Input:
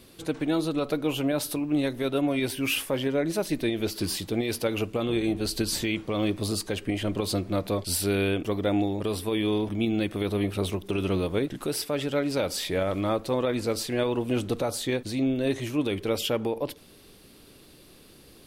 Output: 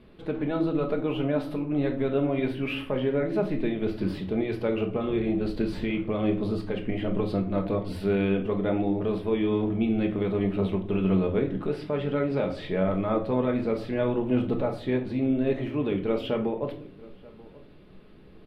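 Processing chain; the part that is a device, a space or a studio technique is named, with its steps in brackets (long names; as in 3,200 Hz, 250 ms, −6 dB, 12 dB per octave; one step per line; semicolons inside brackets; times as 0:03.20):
shout across a valley (high-frequency loss of the air 490 metres; slap from a distant wall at 160 metres, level −21 dB)
0:11.18–0:12.73: low-pass filter 10,000 Hz 12 dB per octave
rectangular room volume 400 cubic metres, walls furnished, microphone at 1.4 metres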